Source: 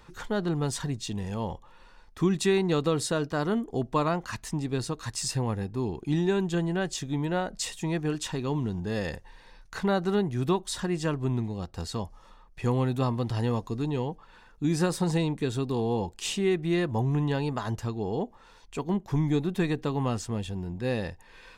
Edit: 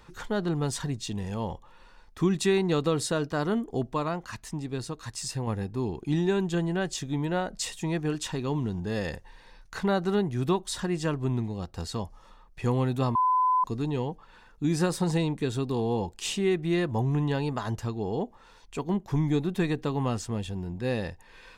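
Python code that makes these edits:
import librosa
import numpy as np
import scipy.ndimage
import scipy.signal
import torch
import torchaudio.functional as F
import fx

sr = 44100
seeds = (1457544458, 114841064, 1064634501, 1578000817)

y = fx.edit(x, sr, fx.clip_gain(start_s=3.93, length_s=1.54, db=-3.5),
    fx.bleep(start_s=13.15, length_s=0.49, hz=1010.0, db=-20.0), tone=tone)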